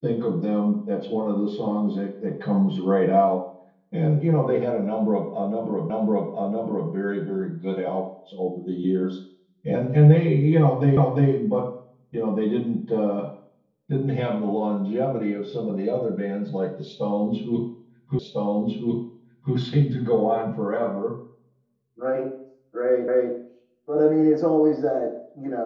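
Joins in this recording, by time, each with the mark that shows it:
5.9 repeat of the last 1.01 s
10.97 repeat of the last 0.35 s
18.19 repeat of the last 1.35 s
23.08 repeat of the last 0.25 s

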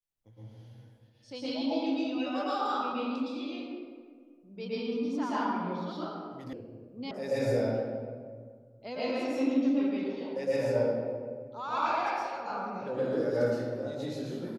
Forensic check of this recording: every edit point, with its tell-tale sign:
6.53 sound cut off
7.11 sound cut off

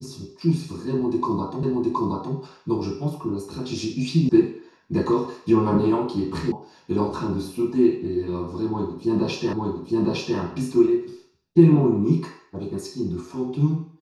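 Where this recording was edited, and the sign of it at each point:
1.63 repeat of the last 0.72 s
4.29 sound cut off
6.52 sound cut off
9.53 repeat of the last 0.86 s

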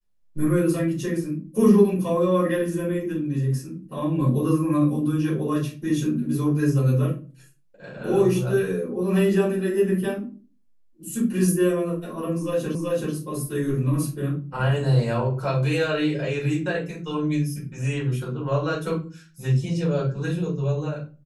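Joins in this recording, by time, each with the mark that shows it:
12.75 repeat of the last 0.38 s

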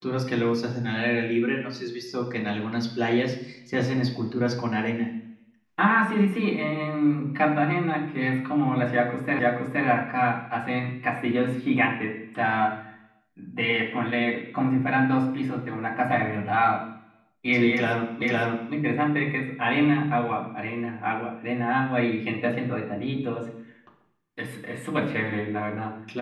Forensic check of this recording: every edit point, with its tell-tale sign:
9.39 repeat of the last 0.47 s
18.22 repeat of the last 0.51 s

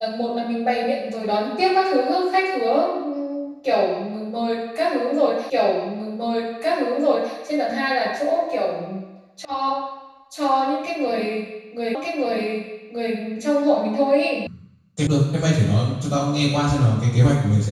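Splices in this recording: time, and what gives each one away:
5.5 repeat of the last 1.86 s
9.45 sound cut off
11.95 repeat of the last 1.18 s
14.47 sound cut off
15.07 sound cut off

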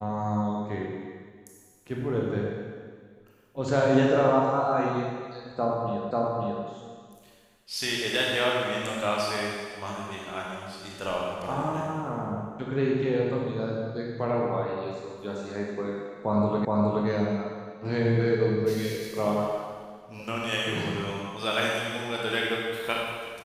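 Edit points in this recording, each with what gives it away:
6.11 repeat of the last 0.54 s
16.65 repeat of the last 0.42 s

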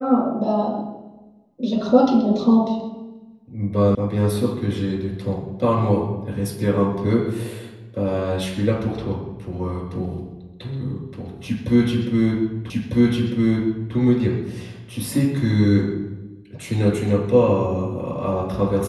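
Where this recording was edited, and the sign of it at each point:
3.95 sound cut off
12.7 repeat of the last 1.25 s

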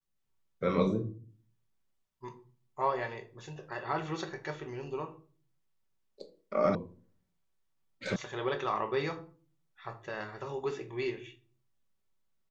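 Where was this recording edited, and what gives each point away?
6.75 sound cut off
8.16 sound cut off

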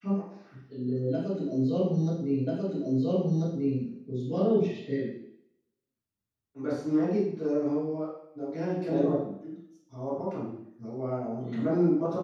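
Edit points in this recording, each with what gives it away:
2.47 repeat of the last 1.34 s

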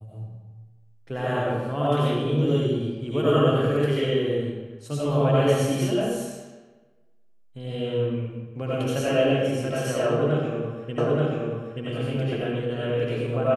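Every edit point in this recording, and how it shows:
10.98 repeat of the last 0.88 s

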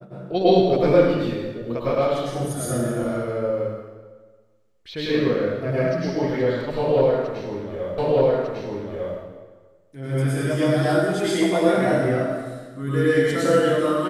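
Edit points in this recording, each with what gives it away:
7.98 repeat of the last 1.2 s

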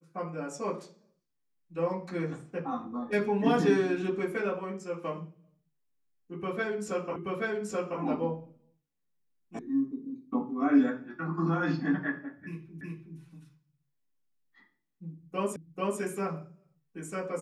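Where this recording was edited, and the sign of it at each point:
7.16 repeat of the last 0.83 s
9.59 sound cut off
12.81 repeat of the last 0.37 s
15.56 repeat of the last 0.44 s

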